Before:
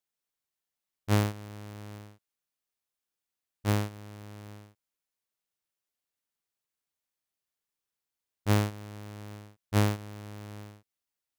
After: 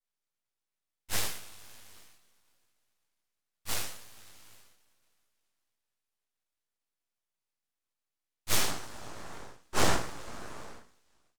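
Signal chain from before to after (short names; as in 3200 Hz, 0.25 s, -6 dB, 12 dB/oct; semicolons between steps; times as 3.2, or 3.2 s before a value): dynamic EQ 1300 Hz, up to +6 dB, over -44 dBFS, Q 0.72; two-slope reverb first 0.62 s, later 3.5 s, from -26 dB, DRR 2 dB; high-pass sweep 1400 Hz -> 230 Hz, 8.21–9.28; noise vocoder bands 2; full-wave rectifier; doubler 17 ms -9.5 dB; vibrato 2.5 Hz 72 cents; ending taper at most 140 dB/s; gain -2.5 dB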